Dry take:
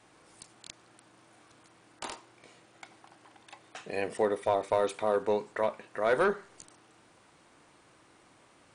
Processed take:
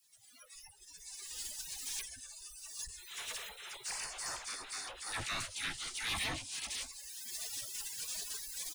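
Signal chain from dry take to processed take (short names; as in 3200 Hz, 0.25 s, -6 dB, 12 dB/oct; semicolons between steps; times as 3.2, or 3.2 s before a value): recorder AGC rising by 32 dB/s; 2.98–5.12 spectral gain 340–4200 Hz -21 dB; on a send: feedback echo 0.51 s, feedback 31%, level -15.5 dB; on the sum: spectral gate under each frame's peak -30 dB weak; 4.34–5.07 frequency shift -65 Hz; dispersion lows, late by 50 ms, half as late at 880 Hz; in parallel at -2 dB: level quantiser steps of 21 dB; on the sum: power-law curve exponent 0.5; spectral noise reduction 13 dB; gain +4.5 dB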